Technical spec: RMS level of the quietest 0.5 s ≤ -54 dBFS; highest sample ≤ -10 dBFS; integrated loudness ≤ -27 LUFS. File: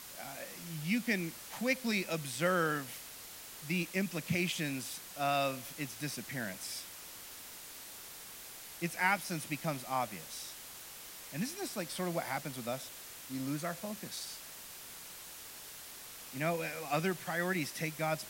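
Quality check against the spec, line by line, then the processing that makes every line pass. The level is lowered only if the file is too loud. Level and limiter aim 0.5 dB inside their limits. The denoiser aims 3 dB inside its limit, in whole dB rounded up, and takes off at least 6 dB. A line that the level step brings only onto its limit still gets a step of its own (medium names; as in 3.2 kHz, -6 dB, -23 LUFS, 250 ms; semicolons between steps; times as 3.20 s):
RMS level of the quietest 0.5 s -49 dBFS: fail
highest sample -15.5 dBFS: pass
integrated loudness -37.5 LUFS: pass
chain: noise reduction 8 dB, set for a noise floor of -49 dBFS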